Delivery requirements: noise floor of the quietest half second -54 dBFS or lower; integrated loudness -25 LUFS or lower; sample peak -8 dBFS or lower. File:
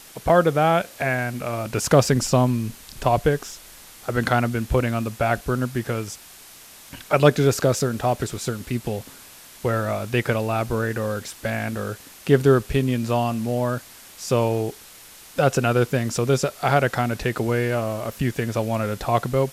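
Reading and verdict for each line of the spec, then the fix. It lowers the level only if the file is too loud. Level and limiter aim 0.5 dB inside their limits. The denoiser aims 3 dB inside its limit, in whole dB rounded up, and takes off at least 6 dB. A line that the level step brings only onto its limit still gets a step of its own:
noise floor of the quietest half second -45 dBFS: fail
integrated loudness -22.5 LUFS: fail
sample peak -2.5 dBFS: fail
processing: noise reduction 9 dB, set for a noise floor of -45 dBFS; trim -3 dB; peak limiter -8.5 dBFS

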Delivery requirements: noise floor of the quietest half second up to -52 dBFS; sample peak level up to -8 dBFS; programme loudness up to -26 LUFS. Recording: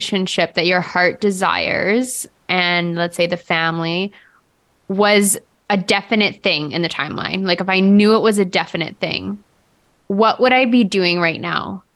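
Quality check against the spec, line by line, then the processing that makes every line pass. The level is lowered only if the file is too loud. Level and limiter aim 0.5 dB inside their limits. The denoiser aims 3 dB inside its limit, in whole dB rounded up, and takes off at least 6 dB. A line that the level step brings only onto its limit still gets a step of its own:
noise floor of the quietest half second -60 dBFS: pass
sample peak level -3.0 dBFS: fail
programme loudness -16.5 LUFS: fail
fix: trim -10 dB

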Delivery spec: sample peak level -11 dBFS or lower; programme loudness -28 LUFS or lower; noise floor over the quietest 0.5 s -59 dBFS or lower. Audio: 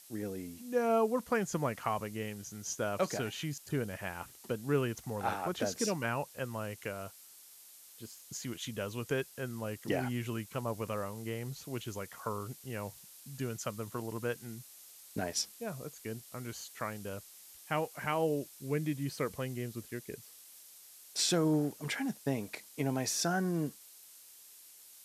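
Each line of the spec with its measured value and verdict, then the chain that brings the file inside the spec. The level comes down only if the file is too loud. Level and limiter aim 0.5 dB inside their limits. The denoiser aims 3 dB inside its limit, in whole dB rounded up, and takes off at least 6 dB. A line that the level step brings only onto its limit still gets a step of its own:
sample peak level -18.5 dBFS: pass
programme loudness -36.0 LUFS: pass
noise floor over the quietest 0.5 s -56 dBFS: fail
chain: noise reduction 6 dB, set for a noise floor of -56 dBFS

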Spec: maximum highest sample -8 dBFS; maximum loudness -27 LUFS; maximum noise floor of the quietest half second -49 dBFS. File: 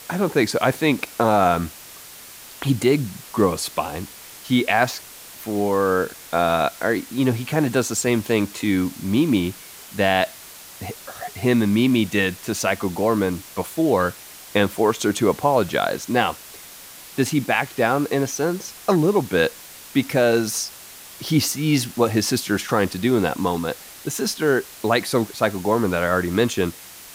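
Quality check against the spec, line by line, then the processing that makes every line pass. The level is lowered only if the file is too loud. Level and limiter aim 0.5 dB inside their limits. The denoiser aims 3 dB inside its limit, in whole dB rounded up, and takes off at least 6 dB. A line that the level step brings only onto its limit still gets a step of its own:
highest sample -4.5 dBFS: fail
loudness -21.5 LUFS: fail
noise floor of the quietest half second -41 dBFS: fail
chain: noise reduction 6 dB, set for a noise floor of -41 dBFS; trim -6 dB

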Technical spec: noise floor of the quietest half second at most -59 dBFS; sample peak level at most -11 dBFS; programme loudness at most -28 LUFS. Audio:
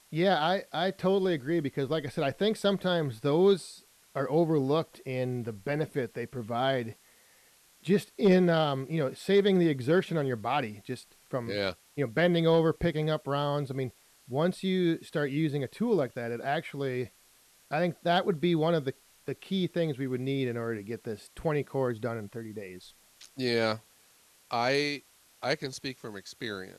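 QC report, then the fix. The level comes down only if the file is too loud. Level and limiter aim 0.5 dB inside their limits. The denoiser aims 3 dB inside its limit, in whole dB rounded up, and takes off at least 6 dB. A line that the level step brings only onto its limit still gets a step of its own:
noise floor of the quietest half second -62 dBFS: pass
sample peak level -14.0 dBFS: pass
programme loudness -29.5 LUFS: pass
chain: none needed

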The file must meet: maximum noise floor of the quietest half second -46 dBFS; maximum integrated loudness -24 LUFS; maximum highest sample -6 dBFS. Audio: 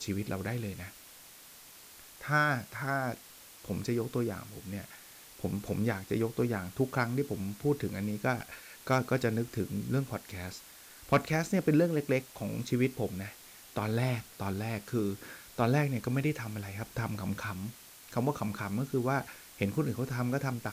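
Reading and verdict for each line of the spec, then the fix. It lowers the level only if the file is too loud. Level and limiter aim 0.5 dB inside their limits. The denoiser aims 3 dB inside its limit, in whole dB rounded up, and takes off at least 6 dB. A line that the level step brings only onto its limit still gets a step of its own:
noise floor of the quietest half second -53 dBFS: pass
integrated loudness -33.0 LUFS: pass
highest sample -16.0 dBFS: pass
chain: none needed

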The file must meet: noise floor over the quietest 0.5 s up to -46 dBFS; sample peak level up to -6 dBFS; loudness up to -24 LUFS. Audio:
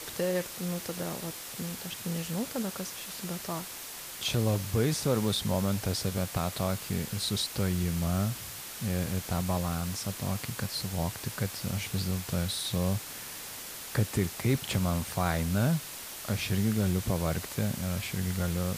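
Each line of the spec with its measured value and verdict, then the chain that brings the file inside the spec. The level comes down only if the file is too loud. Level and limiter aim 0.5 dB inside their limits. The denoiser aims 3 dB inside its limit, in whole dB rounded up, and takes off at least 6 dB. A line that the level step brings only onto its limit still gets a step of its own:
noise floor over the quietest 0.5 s -42 dBFS: fail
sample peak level -15.0 dBFS: pass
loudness -31.5 LUFS: pass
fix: noise reduction 7 dB, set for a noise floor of -42 dBFS

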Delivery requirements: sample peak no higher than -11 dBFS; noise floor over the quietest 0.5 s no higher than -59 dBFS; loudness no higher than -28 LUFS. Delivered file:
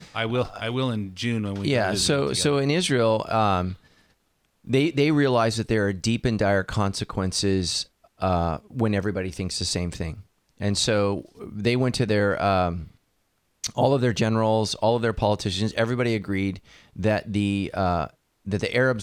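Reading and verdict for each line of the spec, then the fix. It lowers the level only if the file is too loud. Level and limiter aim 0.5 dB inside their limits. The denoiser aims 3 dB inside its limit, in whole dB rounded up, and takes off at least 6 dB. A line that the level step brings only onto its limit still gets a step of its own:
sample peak -7.0 dBFS: fail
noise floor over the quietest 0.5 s -70 dBFS: pass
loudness -24.0 LUFS: fail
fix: trim -4.5 dB

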